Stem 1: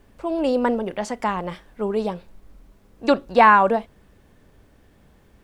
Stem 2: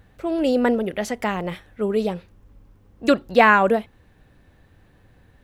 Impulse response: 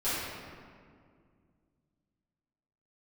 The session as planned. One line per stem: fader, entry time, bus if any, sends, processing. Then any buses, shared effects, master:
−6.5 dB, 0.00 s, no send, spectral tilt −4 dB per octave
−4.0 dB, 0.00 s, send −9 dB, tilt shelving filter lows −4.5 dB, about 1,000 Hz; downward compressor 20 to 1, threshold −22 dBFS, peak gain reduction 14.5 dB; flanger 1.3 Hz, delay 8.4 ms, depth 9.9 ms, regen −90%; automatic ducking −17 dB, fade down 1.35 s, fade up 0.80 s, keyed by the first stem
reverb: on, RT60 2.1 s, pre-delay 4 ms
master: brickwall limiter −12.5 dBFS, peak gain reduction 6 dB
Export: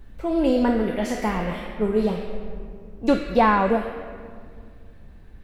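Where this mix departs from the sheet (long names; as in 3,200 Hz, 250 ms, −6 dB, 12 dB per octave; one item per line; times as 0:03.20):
stem 2: send −9 dB → −3 dB
master: missing brickwall limiter −12.5 dBFS, peak gain reduction 6 dB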